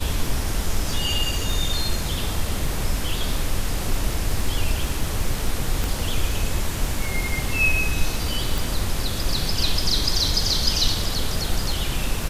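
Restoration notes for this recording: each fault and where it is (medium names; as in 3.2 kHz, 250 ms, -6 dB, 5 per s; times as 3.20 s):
crackle 13 per s -26 dBFS
5.84 s: pop
8.58 s: pop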